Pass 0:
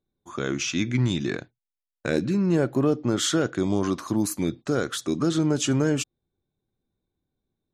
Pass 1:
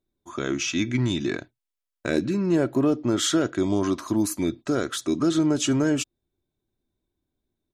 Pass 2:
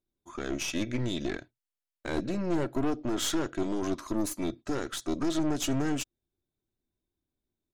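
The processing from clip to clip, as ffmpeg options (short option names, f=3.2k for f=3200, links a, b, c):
-af "aecho=1:1:3.1:0.36"
-af "aeval=exprs='(tanh(12.6*val(0)+0.8)-tanh(0.8))/12.6':c=same,volume=-1.5dB"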